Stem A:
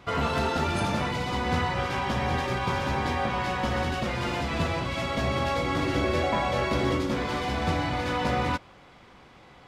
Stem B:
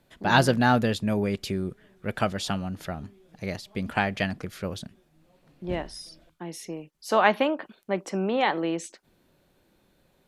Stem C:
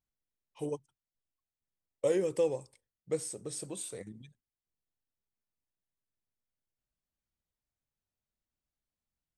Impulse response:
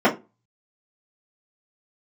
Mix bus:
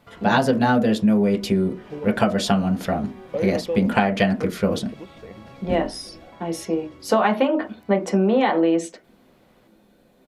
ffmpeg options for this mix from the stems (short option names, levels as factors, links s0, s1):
-filter_complex "[0:a]acompressor=threshold=0.0224:ratio=6,volume=0.282[s0];[1:a]dynaudnorm=f=350:g=11:m=1.68,volume=1.41,asplit=3[s1][s2][s3];[s2]volume=0.0944[s4];[2:a]lowpass=f=2900:w=0.5412,lowpass=f=2900:w=1.3066,adelay=1300,volume=1.33[s5];[s3]apad=whole_len=426585[s6];[s0][s6]sidechaincompress=threshold=0.0708:ratio=8:attack=9.3:release=907[s7];[3:a]atrim=start_sample=2205[s8];[s4][s8]afir=irnorm=-1:irlink=0[s9];[s7][s1][s5][s9]amix=inputs=4:normalize=0,acompressor=threshold=0.2:ratio=10"